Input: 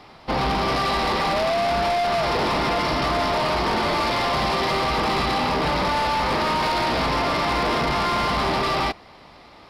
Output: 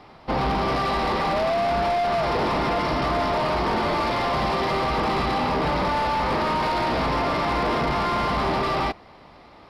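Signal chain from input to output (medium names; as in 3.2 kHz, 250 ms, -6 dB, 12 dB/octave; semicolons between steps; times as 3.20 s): treble shelf 2.5 kHz -8 dB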